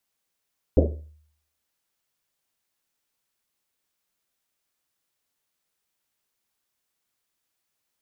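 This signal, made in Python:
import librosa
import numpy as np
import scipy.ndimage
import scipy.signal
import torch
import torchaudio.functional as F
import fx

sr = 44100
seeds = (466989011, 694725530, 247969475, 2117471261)

y = fx.risset_drum(sr, seeds[0], length_s=1.1, hz=76.0, decay_s=0.65, noise_hz=400.0, noise_width_hz=370.0, noise_pct=45)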